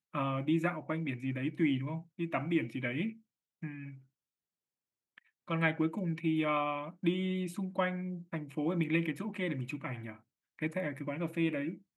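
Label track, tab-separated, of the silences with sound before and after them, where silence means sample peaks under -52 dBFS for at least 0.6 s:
3.990000	5.180000	silence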